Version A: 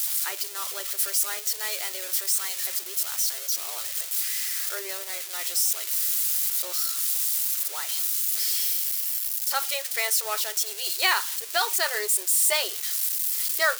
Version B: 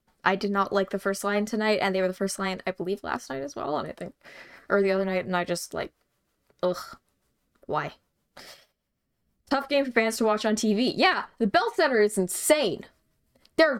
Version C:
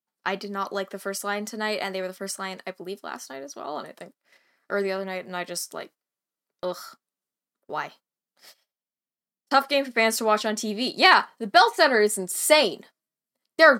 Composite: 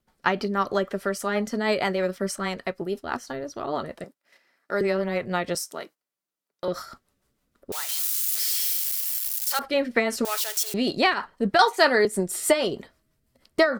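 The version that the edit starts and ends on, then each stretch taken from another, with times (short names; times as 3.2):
B
4.04–4.81 from C
5.55–6.68 from C
7.72–9.59 from A
10.25–10.74 from A
11.59–12.05 from C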